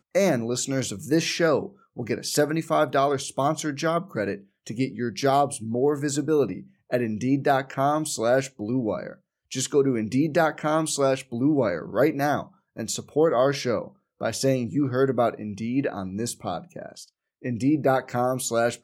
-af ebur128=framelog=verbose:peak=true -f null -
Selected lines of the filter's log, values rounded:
Integrated loudness:
  I:         -24.8 LUFS
  Threshold: -35.2 LUFS
Loudness range:
  LRA:         2.7 LU
  Threshold: -45.2 LUFS
  LRA low:   -26.9 LUFS
  LRA high:  -24.2 LUFS
True peak:
  Peak:       -8.1 dBFS